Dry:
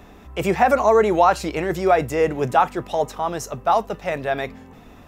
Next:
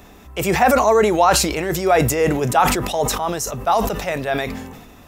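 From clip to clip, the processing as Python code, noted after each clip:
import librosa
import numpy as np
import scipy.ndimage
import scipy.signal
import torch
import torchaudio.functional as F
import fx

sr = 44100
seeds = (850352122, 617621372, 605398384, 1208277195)

y = fx.high_shelf(x, sr, hz=4400.0, db=10.5)
y = fx.sustainer(y, sr, db_per_s=45.0)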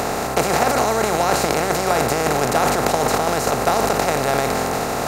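y = fx.bin_compress(x, sr, power=0.2)
y = fx.peak_eq(y, sr, hz=2000.0, db=2.0, octaves=0.77)
y = fx.transient(y, sr, attack_db=7, sustain_db=0)
y = y * librosa.db_to_amplitude(-12.0)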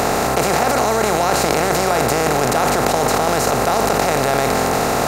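y = fx.env_flatten(x, sr, amount_pct=70)
y = y * librosa.db_to_amplitude(-1.0)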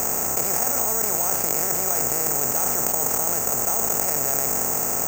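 y = scipy.signal.savgol_filter(x, 25, 4, mode='constant')
y = (np.kron(scipy.signal.resample_poly(y, 1, 6), np.eye(6)[0]) * 6)[:len(y)]
y = y * librosa.db_to_amplitude(-13.5)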